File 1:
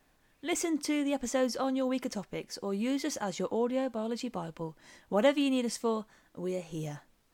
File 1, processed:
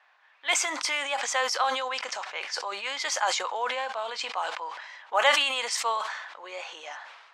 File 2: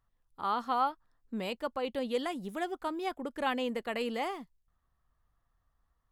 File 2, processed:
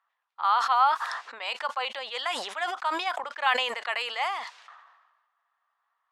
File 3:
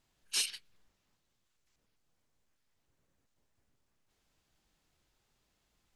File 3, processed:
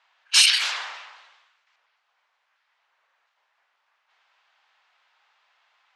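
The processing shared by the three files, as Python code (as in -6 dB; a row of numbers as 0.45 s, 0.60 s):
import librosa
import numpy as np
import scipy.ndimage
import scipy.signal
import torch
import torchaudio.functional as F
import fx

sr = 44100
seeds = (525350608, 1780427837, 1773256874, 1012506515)

y = scipy.signal.sosfilt(scipy.signal.butter(4, 840.0, 'highpass', fs=sr, output='sos'), x)
y = fx.env_lowpass(y, sr, base_hz=2800.0, full_db=-35.5)
y = fx.air_absorb(y, sr, metres=61.0)
y = fx.sustainer(y, sr, db_per_s=47.0)
y = y * 10.0 ** (-30 / 20.0) / np.sqrt(np.mean(np.square(y)))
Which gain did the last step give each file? +12.5 dB, +9.5 dB, +19.0 dB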